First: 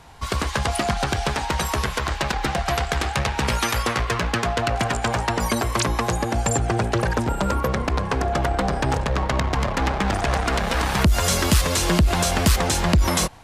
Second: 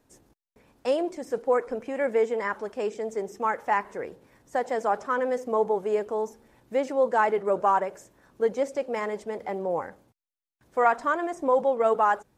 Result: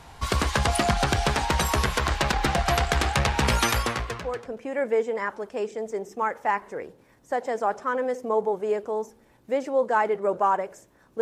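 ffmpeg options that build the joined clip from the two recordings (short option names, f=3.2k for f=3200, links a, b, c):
-filter_complex "[0:a]apad=whole_dur=11.21,atrim=end=11.21,atrim=end=4.67,asetpts=PTS-STARTPTS[a];[1:a]atrim=start=0.92:end=8.44,asetpts=PTS-STARTPTS[b];[a][b]acrossfade=d=0.98:c1=qua:c2=qua"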